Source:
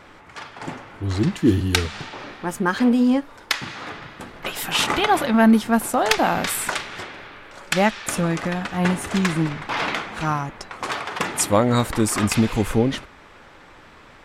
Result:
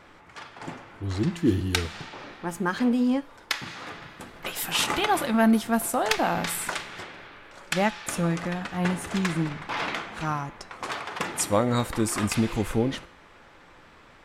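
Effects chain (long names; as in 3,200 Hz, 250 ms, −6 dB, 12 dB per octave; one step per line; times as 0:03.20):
0:03.66–0:05.97: high-shelf EQ 6,500 Hz +6.5 dB
tuned comb filter 170 Hz, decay 0.7 s, harmonics all, mix 50%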